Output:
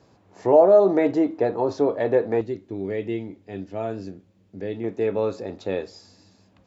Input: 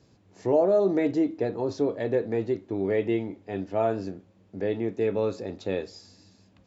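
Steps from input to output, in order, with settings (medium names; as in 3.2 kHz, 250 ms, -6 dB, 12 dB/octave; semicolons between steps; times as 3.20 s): peaking EQ 890 Hz +10 dB 2.1 oct, from 2.41 s -5.5 dB, from 4.84 s +4.5 dB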